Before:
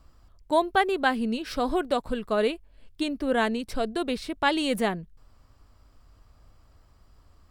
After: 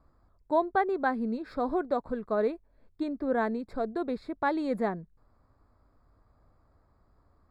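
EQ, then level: running mean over 15 samples; low shelf 94 Hz -9.5 dB; -2.0 dB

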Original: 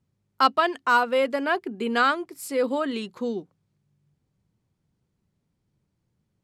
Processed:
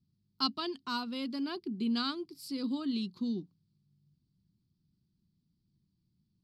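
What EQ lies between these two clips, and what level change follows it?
EQ curve 120 Hz 0 dB, 180 Hz +5 dB, 350 Hz -3 dB, 520 Hz -22 dB, 1100 Hz -12 dB, 1800 Hz -20 dB, 4700 Hz +7 dB, 6900 Hz -13 dB, 11000 Hz -9 dB; -3.5 dB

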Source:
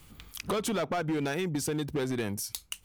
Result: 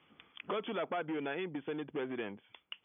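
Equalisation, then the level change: HPF 280 Hz 12 dB/oct; brick-wall FIR low-pass 3500 Hz; -5.0 dB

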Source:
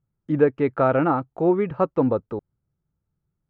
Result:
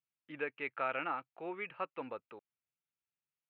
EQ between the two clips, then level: band-pass 2600 Hz, Q 3.7; air absorption 130 m; +4.5 dB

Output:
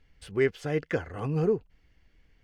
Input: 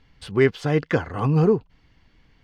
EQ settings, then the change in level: graphic EQ 125/250/1000/4000 Hz -7/-6/-10/-8 dB; -2.5 dB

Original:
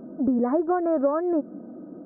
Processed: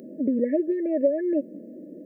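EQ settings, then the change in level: HPF 120 Hz; brick-wall FIR band-stop 640–1700 Hz; tilt +3 dB/oct; +4.5 dB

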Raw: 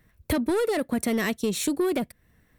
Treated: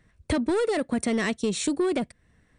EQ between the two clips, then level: brick-wall FIR low-pass 9700 Hz; 0.0 dB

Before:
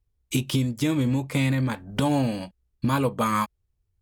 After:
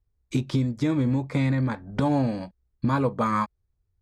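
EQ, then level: LPF 4200 Hz 12 dB/oct; bell 2900 Hz -13 dB 0.47 oct; 0.0 dB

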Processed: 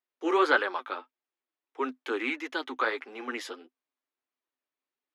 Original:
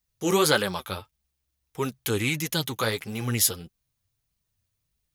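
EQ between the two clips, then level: LPF 2600 Hz 12 dB/oct; dynamic EQ 1500 Hz, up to +6 dB, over -42 dBFS, Q 1.1; rippled Chebyshev high-pass 250 Hz, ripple 3 dB; -2.0 dB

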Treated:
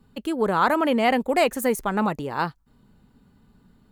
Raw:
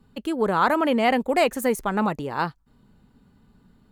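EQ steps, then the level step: high shelf 11000 Hz +4 dB; 0.0 dB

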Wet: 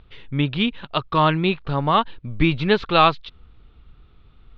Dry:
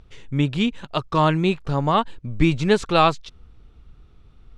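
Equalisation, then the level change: steep low-pass 4000 Hz 36 dB/oct; bell 1200 Hz +2.5 dB; high shelf 2700 Hz +8.5 dB; -1.0 dB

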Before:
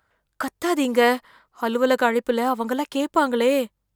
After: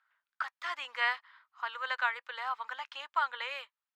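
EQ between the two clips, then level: HPF 1100 Hz 24 dB/oct; air absorption 230 m; -3.5 dB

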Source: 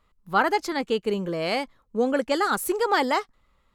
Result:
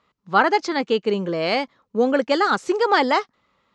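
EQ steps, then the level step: HPF 150 Hz 12 dB/oct; steep low-pass 6600 Hz 36 dB/oct; +4.5 dB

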